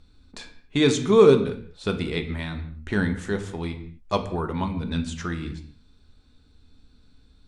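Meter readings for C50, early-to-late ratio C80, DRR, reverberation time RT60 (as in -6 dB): 11.0 dB, 14.0 dB, 6.0 dB, not exponential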